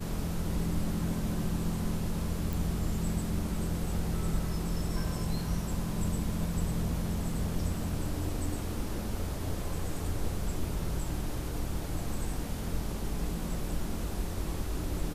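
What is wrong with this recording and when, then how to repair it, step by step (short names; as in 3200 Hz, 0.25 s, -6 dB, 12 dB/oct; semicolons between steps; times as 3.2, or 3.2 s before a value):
2.53 pop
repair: de-click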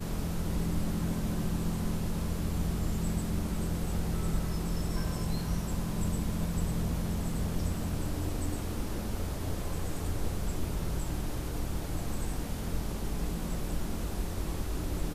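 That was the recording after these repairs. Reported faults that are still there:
none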